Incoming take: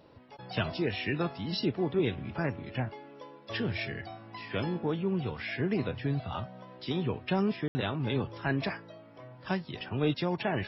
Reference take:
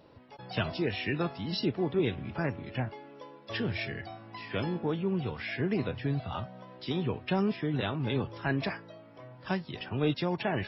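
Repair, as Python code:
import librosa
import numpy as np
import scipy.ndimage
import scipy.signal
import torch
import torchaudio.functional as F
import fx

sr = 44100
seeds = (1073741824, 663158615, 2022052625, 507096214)

y = fx.fix_ambience(x, sr, seeds[0], print_start_s=0.0, print_end_s=0.5, start_s=7.68, end_s=7.75)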